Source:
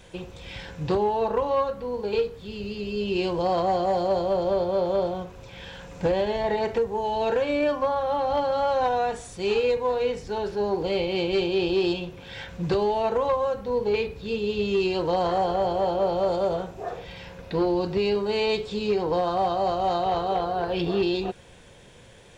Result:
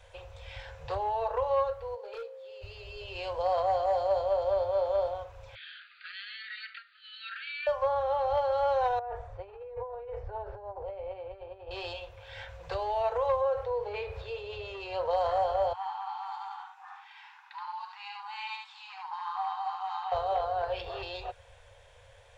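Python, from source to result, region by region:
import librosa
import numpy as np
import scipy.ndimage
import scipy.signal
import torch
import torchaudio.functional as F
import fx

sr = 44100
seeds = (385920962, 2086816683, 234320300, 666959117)

y = fx.dmg_tone(x, sr, hz=530.0, level_db=-35.0, at=(1.94, 2.61), fade=0.02)
y = fx.ladder_highpass(y, sr, hz=250.0, resonance_pct=30, at=(1.94, 2.61), fade=0.02)
y = fx.overload_stage(y, sr, gain_db=26.0, at=(1.94, 2.61), fade=0.02)
y = fx.chain(y, sr, fx.brickwall_bandpass(low_hz=1200.0, high_hz=4800.0),
    fx.high_shelf(hz=3600.0, db=10.0), at=(5.55, 7.67))
y = fx.chain(y, sr, fx.lowpass(hz=1100.0, slope=12),
    fx.over_compress(threshold_db=-32.0, ratio=-1.0), at=(8.99, 11.71))
y = fx.chain(y, sr, fx.highpass(hz=540.0, slope=6),
    fx.tilt_eq(slope=-3.0),
    fx.env_flatten(amount_pct=50), at=(13.41, 15.11))
y = fx.chain(y, sr, fx.brickwall_highpass(low_hz=760.0),
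    fx.high_shelf(hz=3300.0, db=-9.5),
    fx.echo_single(ms=74, db=-3.5), at=(15.73, 20.12))
y = scipy.signal.sosfilt(scipy.signal.cheby1(3, 1.0, [100.0, 540.0], 'bandstop', fs=sr, output='sos'), y)
y = fx.high_shelf(y, sr, hz=2700.0, db=-9.5)
y = y * librosa.db_to_amplitude(-2.0)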